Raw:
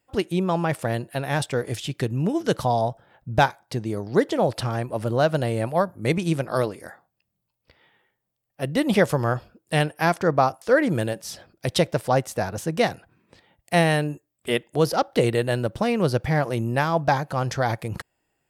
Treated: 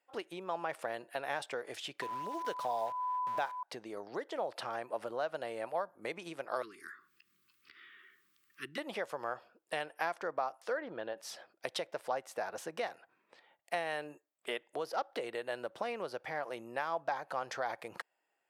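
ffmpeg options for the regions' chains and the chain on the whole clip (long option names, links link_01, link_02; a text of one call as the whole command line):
ffmpeg -i in.wav -filter_complex "[0:a]asettb=1/sr,asplit=3[link_01][link_02][link_03];[link_01]atrim=end=2.024[link_04];[link_02]atrim=start=2.02:end=3.63,asetpts=PTS-STARTPTS,afade=type=in:duration=0.004:curve=qsin,afade=type=out:start_time=1.606:duration=0.004:curve=qsin,acrusher=bits=7:dc=4:mix=0:aa=0.000001,aeval=exprs='val(0)+0.0398*sin(2*PI*1000*n/s)':channel_layout=same[link_05];[link_03]atrim=start=3.626[link_06];[link_04][link_05]acrossfade=duration=0.004:curve1=hsin:curve2=qsin[link_07];[link_07][link_06]acrossfade=duration=0.004:curve1=qsin:curve2=hsin,asettb=1/sr,asplit=3[link_08][link_09][link_10];[link_08]atrim=end=6.624[link_11];[link_09]atrim=start=6.62:end=8.78,asetpts=PTS-STARTPTS,afade=type=in:duration=0.004:curve=qsin,afade=type=out:start_time=2.156:duration=0.004:curve=qsin,asuperstop=centerf=670:order=12:qfactor=0.91,acompressor=mode=upward:threshold=-39dB:ratio=2.5:attack=3.2:release=140:knee=2.83:detection=peak[link_12];[link_10]atrim=start=8.776[link_13];[link_11][link_12]acrossfade=duration=0.004:curve1=hsin:curve2=qsin[link_14];[link_14][link_13]acrossfade=duration=0.004:curve1=qsin:curve2=hsin,asettb=1/sr,asplit=3[link_15][link_16][link_17];[link_15]atrim=end=10.774[link_18];[link_16]atrim=start=10.77:end=11.18,asetpts=PTS-STARTPTS,afade=type=in:duration=0.004:curve=qsin,afade=type=out:start_time=0.406:duration=0.004:curve=qsin,lowpass=frequency=3800:width=0.5412,lowpass=frequency=3800:width=1.3066,equalizer=frequency=2300:width_type=o:width=0.48:gain=-8.5[link_19];[link_17]atrim=start=11.176[link_20];[link_18][link_19]acrossfade=duration=0.004:curve1=hsin:curve2=qsin[link_21];[link_21][link_20]acrossfade=duration=0.004:curve1=qsin:curve2=hsin,acompressor=threshold=-26dB:ratio=6,highpass=600,highshelf=frequency=4000:gain=-11.5,volume=-2.5dB" out.wav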